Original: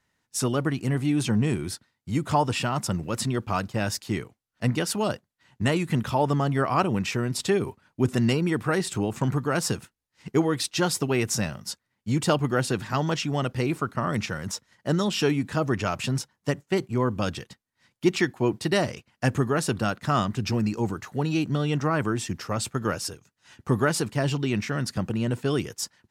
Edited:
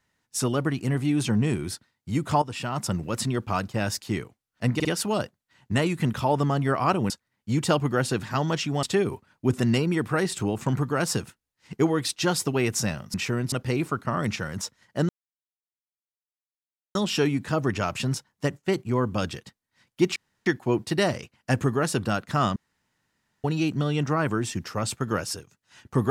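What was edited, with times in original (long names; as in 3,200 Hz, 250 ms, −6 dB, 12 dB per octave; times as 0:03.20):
0:02.42–0:02.88: fade in linear, from −12.5 dB
0:04.75: stutter 0.05 s, 3 plays
0:07.00–0:07.38: swap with 0:11.69–0:13.42
0:14.99: splice in silence 1.86 s
0:18.20: splice in room tone 0.30 s
0:20.30–0:21.18: fill with room tone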